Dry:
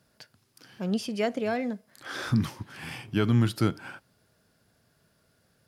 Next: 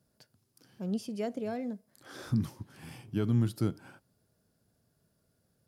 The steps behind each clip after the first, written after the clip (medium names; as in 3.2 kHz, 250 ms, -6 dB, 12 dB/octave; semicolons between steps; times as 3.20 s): peaking EQ 2.1 kHz -10.5 dB 2.8 oct; trim -4 dB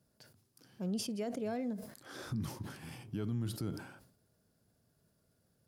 peak limiter -28.5 dBFS, peak gain reduction 10 dB; decay stretcher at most 85 dB/s; trim -1 dB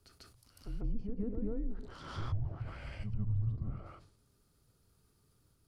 low-pass that closes with the level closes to 580 Hz, closed at -37 dBFS; reverse echo 145 ms -5 dB; frequency shift -220 Hz; trim +3 dB